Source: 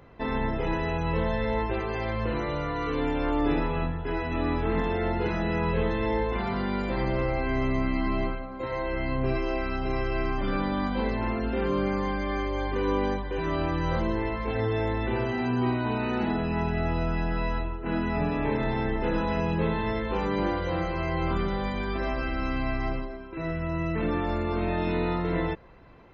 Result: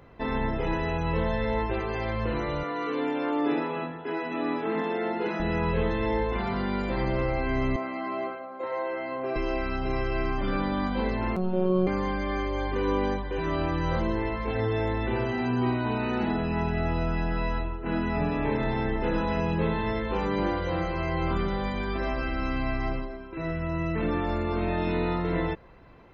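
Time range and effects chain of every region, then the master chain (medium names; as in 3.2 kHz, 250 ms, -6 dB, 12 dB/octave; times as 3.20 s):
2.63–5.40 s: high-pass 200 Hz 24 dB/octave + distance through air 54 m
7.76–9.36 s: high-pass 650 Hz + tilt shelf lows +8.5 dB, about 1.4 kHz + band-stop 990 Hz, Q 18
11.36–11.87 s: low-pass 1.3 kHz 6 dB/octave + robot voice 184 Hz + comb 5.2 ms, depth 85%
whole clip: none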